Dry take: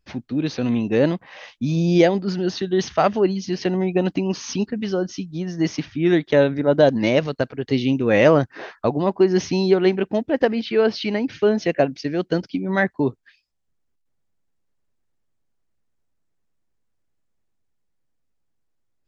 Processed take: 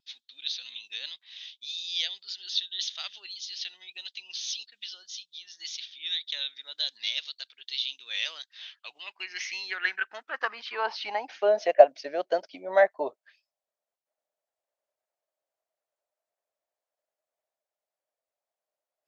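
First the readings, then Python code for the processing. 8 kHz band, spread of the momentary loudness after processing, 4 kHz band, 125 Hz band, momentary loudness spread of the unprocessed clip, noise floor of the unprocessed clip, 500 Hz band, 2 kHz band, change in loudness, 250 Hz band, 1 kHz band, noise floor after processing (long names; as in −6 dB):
can't be measured, 17 LU, +2.5 dB, below −40 dB, 9 LU, −70 dBFS, −9.5 dB, −5.5 dB, −9.0 dB, −31.0 dB, −5.0 dB, below −85 dBFS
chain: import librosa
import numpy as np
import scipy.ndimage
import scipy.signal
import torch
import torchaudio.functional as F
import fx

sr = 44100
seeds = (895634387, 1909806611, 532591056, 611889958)

y = fx.low_shelf(x, sr, hz=310.0, db=-6.5)
y = fx.filter_sweep_highpass(y, sr, from_hz=3600.0, to_hz=620.0, start_s=8.52, end_s=11.59, q=6.9)
y = fx.vibrato(y, sr, rate_hz=1.8, depth_cents=34.0)
y = y * librosa.db_to_amplitude(-7.0)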